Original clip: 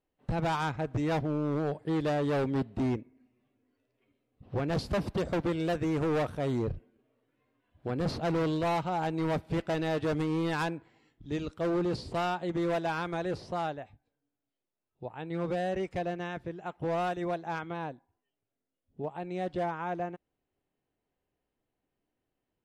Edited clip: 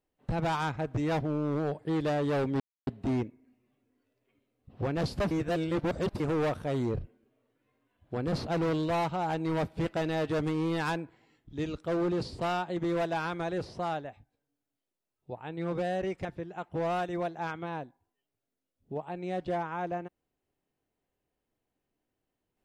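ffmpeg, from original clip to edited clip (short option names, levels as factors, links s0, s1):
-filter_complex "[0:a]asplit=5[s0][s1][s2][s3][s4];[s0]atrim=end=2.6,asetpts=PTS-STARTPTS,afade=t=out:st=2.596:d=0.004:c=hsin,apad=pad_dur=0.27[s5];[s1]atrim=start=2.6:end=5.042,asetpts=PTS-STARTPTS,afade=t=in:d=0.004:c=hsin[s6];[s2]atrim=start=5.038:end=5.932,asetpts=PTS-STARTPTS,areverse[s7];[s3]atrim=start=5.928:end=15.982[s8];[s4]atrim=start=16.328[s9];[s5][s6]concat=n=2:v=0:a=1[s10];[s10][s7]acrossfade=d=0.004:c1=hsin:c2=hsin[s11];[s11][s8]acrossfade=d=0.004:c1=hsin:c2=hsin[s12];[s12][s9]acrossfade=d=0.004:c1=hsin:c2=hsin"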